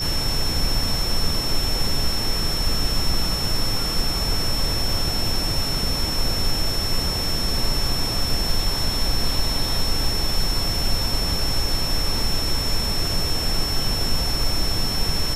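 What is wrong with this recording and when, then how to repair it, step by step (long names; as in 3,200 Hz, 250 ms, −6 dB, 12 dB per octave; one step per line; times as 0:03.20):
whistle 5,400 Hz −25 dBFS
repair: notch filter 5,400 Hz, Q 30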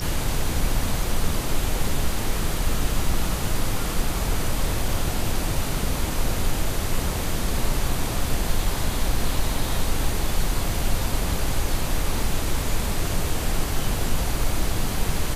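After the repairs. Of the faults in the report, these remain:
none of them is left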